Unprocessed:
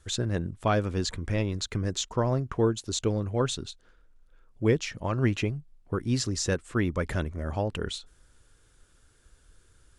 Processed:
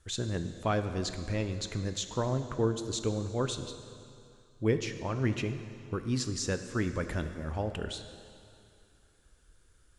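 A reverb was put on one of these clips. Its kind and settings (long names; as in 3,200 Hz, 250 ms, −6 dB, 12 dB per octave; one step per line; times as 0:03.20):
dense smooth reverb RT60 2.5 s, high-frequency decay 0.95×, DRR 8.5 dB
level −4.5 dB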